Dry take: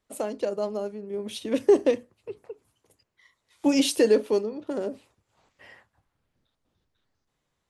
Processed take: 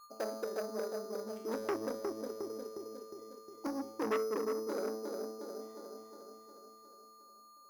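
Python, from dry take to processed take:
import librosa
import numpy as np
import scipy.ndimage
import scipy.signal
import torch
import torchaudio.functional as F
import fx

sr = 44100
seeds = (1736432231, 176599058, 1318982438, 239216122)

y = fx.wiener(x, sr, points=25)
y = fx.weighting(y, sr, curve='A')
y = fx.env_lowpass_down(y, sr, base_hz=330.0, full_db=-27.0)
y = fx.high_shelf_res(y, sr, hz=2300.0, db=-9.0, q=1.5)
y = y + 10.0 ** (-52.0 / 20.0) * np.sin(2.0 * np.pi * 1200.0 * np.arange(len(y)) / sr)
y = fx.comb_fb(y, sr, f0_hz=110.0, decay_s=0.92, harmonics='all', damping=0.0, mix_pct=90)
y = fx.echo_feedback(y, sr, ms=359, feedback_pct=59, wet_db=-4.5)
y = np.repeat(scipy.signal.resample_poly(y, 1, 8), 8)[:len(y)]
y = fx.transformer_sat(y, sr, knee_hz=1200.0)
y = y * librosa.db_to_amplitude(11.5)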